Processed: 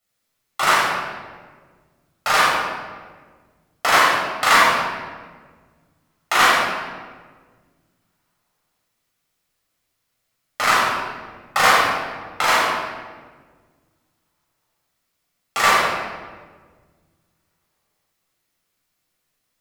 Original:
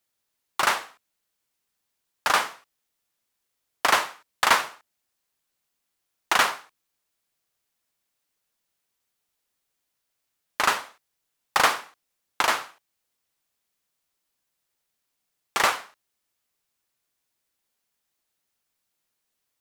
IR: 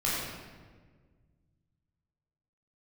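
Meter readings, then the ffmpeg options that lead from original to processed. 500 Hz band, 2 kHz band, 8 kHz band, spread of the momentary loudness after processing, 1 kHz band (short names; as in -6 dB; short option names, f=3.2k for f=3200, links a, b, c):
+8.5 dB, +8.0 dB, +4.5 dB, 19 LU, +8.0 dB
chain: -filter_complex "[1:a]atrim=start_sample=2205[a];[0:a][a]afir=irnorm=-1:irlink=0,volume=-2dB"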